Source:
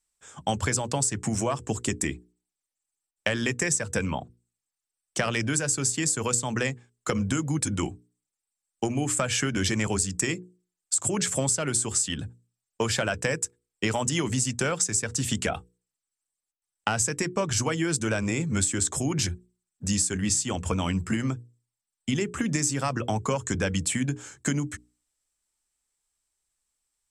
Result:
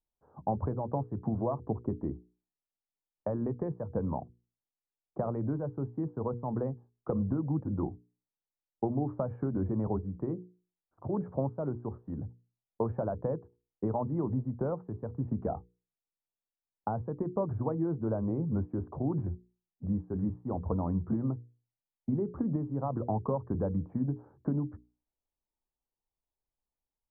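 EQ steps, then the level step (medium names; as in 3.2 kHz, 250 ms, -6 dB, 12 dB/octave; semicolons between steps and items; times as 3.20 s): steep low-pass 990 Hz 36 dB/octave; -3.5 dB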